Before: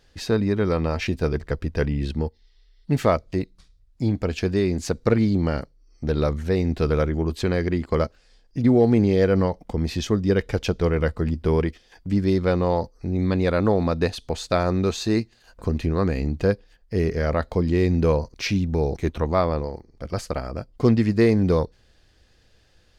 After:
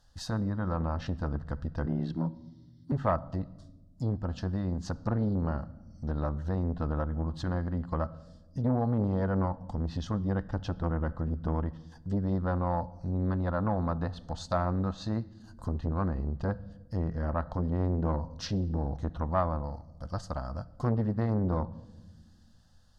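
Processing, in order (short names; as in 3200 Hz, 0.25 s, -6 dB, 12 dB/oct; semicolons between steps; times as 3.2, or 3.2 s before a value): treble ducked by the level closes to 1900 Hz, closed at -19 dBFS; fixed phaser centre 960 Hz, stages 4; 1.86–2.92 frequency shift +89 Hz; on a send at -17.5 dB: reverb RT60 1.2 s, pre-delay 4 ms; on the sum: core saturation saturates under 420 Hz; gain -3 dB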